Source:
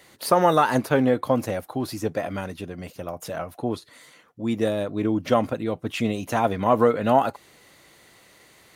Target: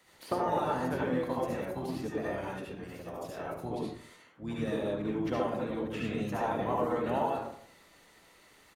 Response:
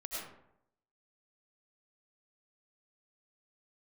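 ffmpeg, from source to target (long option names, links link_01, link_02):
-filter_complex "[1:a]atrim=start_sample=2205,asetrate=61740,aresample=44100[link_01];[0:a][link_01]afir=irnorm=-1:irlink=0,acrossover=split=96|1200|3300[link_02][link_03][link_04][link_05];[link_02]acompressor=threshold=-56dB:ratio=4[link_06];[link_03]acompressor=threshold=-25dB:ratio=4[link_07];[link_04]acompressor=threshold=-38dB:ratio=4[link_08];[link_05]acompressor=threshold=-51dB:ratio=4[link_09];[link_06][link_07][link_08][link_09]amix=inputs=4:normalize=0,asplit=3[link_10][link_11][link_12];[link_11]asetrate=22050,aresample=44100,atempo=2,volume=-11dB[link_13];[link_12]asetrate=29433,aresample=44100,atempo=1.49831,volume=-7dB[link_14];[link_10][link_13][link_14]amix=inputs=3:normalize=0,volume=-4.5dB"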